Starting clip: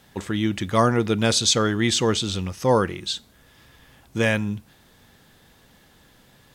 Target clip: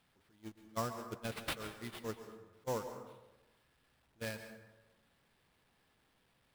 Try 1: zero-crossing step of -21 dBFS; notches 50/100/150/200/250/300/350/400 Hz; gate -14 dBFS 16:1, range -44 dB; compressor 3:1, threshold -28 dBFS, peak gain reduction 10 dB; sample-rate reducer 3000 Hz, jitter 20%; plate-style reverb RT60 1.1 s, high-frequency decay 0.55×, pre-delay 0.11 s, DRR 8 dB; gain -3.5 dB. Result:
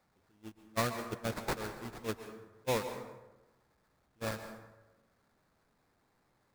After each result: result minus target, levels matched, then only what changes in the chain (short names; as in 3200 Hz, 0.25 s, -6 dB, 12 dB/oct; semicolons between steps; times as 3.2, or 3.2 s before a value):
compressor: peak gain reduction -5.5 dB; sample-rate reducer: distortion +4 dB
change: compressor 3:1, threshold -36 dBFS, peak gain reduction 15.5 dB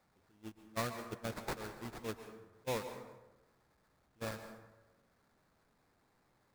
sample-rate reducer: distortion +4 dB
change: sample-rate reducer 6600 Hz, jitter 20%